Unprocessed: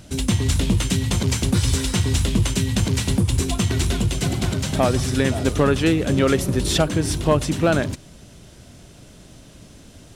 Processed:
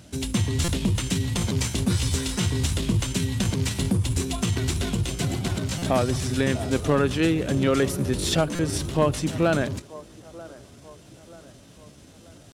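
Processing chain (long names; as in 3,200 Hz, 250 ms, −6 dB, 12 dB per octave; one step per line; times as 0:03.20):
high-pass filter 62 Hz 12 dB per octave
tempo change 0.81×
on a send: delay with a band-pass on its return 935 ms, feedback 47%, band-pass 680 Hz, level −18 dB
on the sum: buffer that repeats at 0:00.64/0:05.78/0:08.55, samples 256, times 6
level −3.5 dB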